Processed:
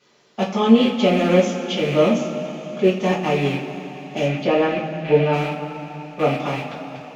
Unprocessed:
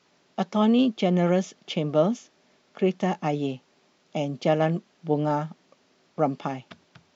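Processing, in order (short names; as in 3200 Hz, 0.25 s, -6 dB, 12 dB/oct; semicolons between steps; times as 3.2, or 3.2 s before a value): rattling part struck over -39 dBFS, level -25 dBFS; 4.25–5.33 LPF 3300 Hz 12 dB/oct; two-slope reverb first 0.27 s, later 3.9 s, from -18 dB, DRR -8 dB; gain -2 dB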